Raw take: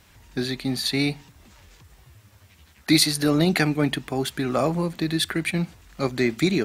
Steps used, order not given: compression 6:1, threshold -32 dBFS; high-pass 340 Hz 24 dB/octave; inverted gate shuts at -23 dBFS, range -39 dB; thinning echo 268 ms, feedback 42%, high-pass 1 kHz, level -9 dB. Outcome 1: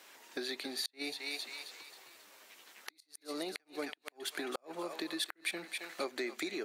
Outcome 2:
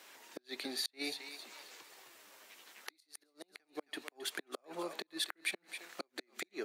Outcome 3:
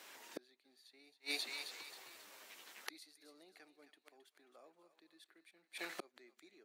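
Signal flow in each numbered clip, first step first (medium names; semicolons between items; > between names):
thinning echo > compression > high-pass > inverted gate; compression > thinning echo > inverted gate > high-pass; thinning echo > inverted gate > compression > high-pass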